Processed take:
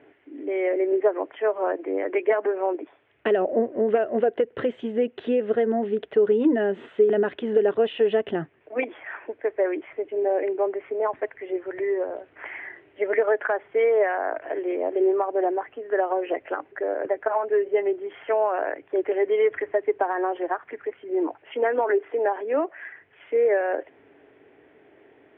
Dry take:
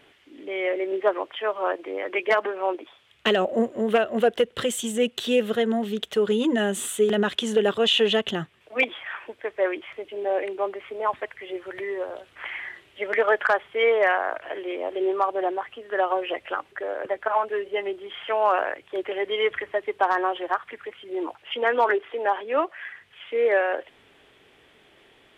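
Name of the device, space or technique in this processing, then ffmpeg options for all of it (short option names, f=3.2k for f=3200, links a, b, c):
bass amplifier: -af "acompressor=threshold=-21dB:ratio=6,highpass=89,equalizer=f=200:t=q:w=4:g=-5,equalizer=f=290:t=q:w=4:g=9,equalizer=f=420:t=q:w=4:g=6,equalizer=f=660:t=q:w=4:g=4,equalizer=f=1.2k:t=q:w=4:g=-6,lowpass=f=2.1k:w=0.5412,lowpass=f=2.1k:w=1.3066"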